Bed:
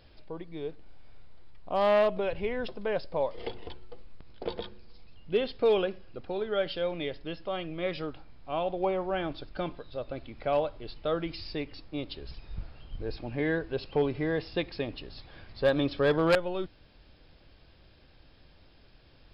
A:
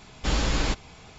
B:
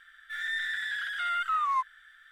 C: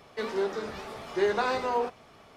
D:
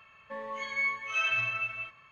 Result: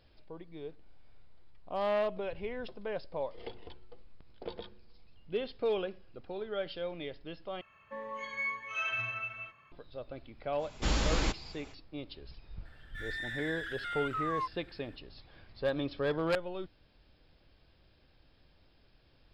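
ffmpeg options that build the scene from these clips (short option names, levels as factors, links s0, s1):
-filter_complex "[0:a]volume=0.447[s0];[4:a]highshelf=f=2100:g=-7.5[s1];[s0]asplit=2[s2][s3];[s2]atrim=end=7.614[s4];[s1]atrim=end=2.11,asetpts=PTS-STARTPTS,volume=0.841[s5];[s3]atrim=start=9.716[s6];[1:a]atrim=end=1.18,asetpts=PTS-STARTPTS,volume=0.562,afade=t=in:d=0.05,afade=t=out:st=1.13:d=0.05,adelay=466578S[s7];[2:a]atrim=end=2.31,asetpts=PTS-STARTPTS,volume=0.422,afade=t=in:d=0.004:c=hsin,afade=t=out:st=2.306:d=0.004:c=hsin,adelay=12650[s8];[s4][s5]acrossfade=d=0.004:c1=hsin:c2=hsin[s9];[s9][s6]acrossfade=d=0.004:c1=hsin:c2=hsin[s10];[s10][s7][s8]amix=inputs=3:normalize=0"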